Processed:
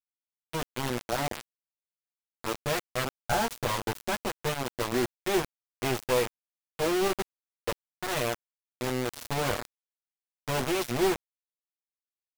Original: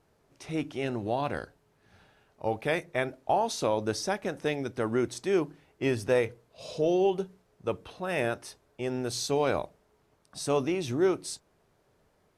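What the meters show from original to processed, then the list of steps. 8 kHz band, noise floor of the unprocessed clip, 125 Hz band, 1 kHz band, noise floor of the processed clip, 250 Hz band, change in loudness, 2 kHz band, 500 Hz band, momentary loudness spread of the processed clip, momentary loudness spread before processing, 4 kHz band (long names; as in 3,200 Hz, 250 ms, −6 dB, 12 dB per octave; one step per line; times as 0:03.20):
+2.5 dB, −69 dBFS, +0.5 dB, +0.5 dB, below −85 dBFS, −2.0 dB, −0.5 dB, +2.0 dB, −2.5 dB, 10 LU, 12 LU, +4.0 dB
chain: lower of the sound and its delayed copy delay 8.3 ms
low-pass that shuts in the quiet parts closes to 1,800 Hz, open at −25.5 dBFS
bit reduction 5 bits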